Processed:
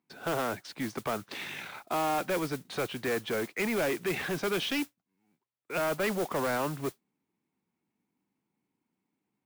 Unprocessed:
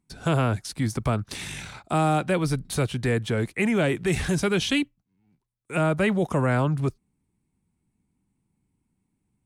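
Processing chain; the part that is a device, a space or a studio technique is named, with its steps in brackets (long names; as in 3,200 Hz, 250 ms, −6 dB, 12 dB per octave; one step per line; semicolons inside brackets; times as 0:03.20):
carbon microphone (band-pass filter 320–3,200 Hz; soft clipping −25 dBFS, distortion −11 dB; noise that follows the level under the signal 14 dB)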